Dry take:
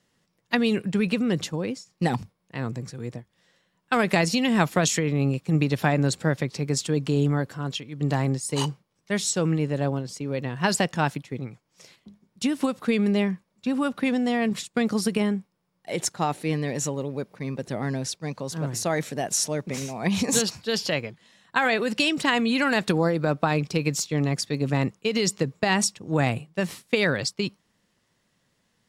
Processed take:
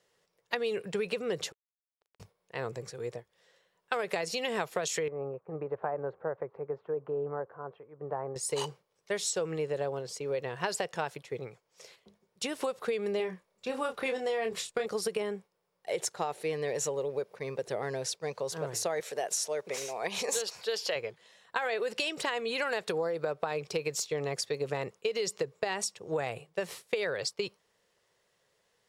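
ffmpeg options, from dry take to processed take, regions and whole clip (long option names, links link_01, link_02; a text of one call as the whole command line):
ffmpeg -i in.wav -filter_complex "[0:a]asettb=1/sr,asplit=3[link_01][link_02][link_03];[link_01]atrim=end=1.524[link_04];[link_02]atrim=start=1.52:end=2.2,asetpts=PTS-STARTPTS,afade=type=in:duration=0.004:curve=qsin,afade=type=out:start_time=0.676:duration=0.004:curve=qsin,lowshelf=frequency=280:gain=6,acompressor=threshold=-35dB:ratio=6:attack=3.2:release=140:knee=1:detection=peak,acrusher=bits=3:mix=0:aa=0.5[link_05];[link_03]atrim=start=2.196[link_06];[link_04][link_05]acrossfade=duration=0.004:curve1=hsin:curve2=qsin[link_07];[link_07][link_06]acrossfade=duration=0.004:curve1=qsin:curve2=hsin,asettb=1/sr,asplit=3[link_08][link_09][link_10];[link_08]atrim=end=5.084[link_11];[link_09]atrim=start=5.08:end=8.36,asetpts=PTS-STARTPTS,afade=type=in:duration=0.004:curve=qsin,afade=type=out:start_time=3.276:duration=0.004:curve=qsin,lowpass=frequency=1200:width=0.5412,lowpass=frequency=1200:width=1.3066,lowshelf=frequency=500:gain=-10.5[link_12];[link_10]atrim=start=8.356[link_13];[link_11][link_12]acrossfade=duration=0.004:curve1=hsin:curve2=qsin[link_14];[link_14][link_13]acrossfade=duration=0.004:curve1=qsin:curve2=hsin,asettb=1/sr,asplit=3[link_15][link_16][link_17];[link_15]atrim=end=13.174[link_18];[link_16]atrim=start=13.17:end=14.86,asetpts=PTS-STARTPTS,afade=type=in:duration=0.004:curve=qsin,afade=type=out:start_time=1.686:duration=0.004:curve=qsin,asubboost=boost=5.5:cutoff=85,asplit=2[link_19][link_20];[link_20]adelay=27,volume=-6dB[link_21];[link_19][link_21]amix=inputs=2:normalize=0,atrim=end_sample=74529[link_22];[link_17]atrim=start=14.856[link_23];[link_18][link_22]acrossfade=duration=0.004:curve1=hsin:curve2=qsin[link_24];[link_24][link_23]acrossfade=duration=0.004:curve1=qsin:curve2=hsin,asettb=1/sr,asplit=3[link_25][link_26][link_27];[link_25]atrim=end=19.004[link_28];[link_26]atrim=start=19:end=20.96,asetpts=PTS-STARTPTS,afade=type=in:duration=0.004:curve=qsin,afade=type=out:start_time=1.956:duration=0.004:curve=qsin,highpass=frequency=420:poles=1,acompressor=mode=upward:threshold=-33dB:ratio=2.5:attack=3.2:release=140:knee=2.83:detection=peak[link_29];[link_27]atrim=start=20.956[link_30];[link_28][link_29]acrossfade=duration=0.004:curve1=hsin:curve2=qsin[link_31];[link_31][link_30]acrossfade=duration=0.004:curve1=qsin:curve2=hsin,lowshelf=frequency=340:width_type=q:width=3:gain=-8,acompressor=threshold=-26dB:ratio=6,volume=-2.5dB" out.wav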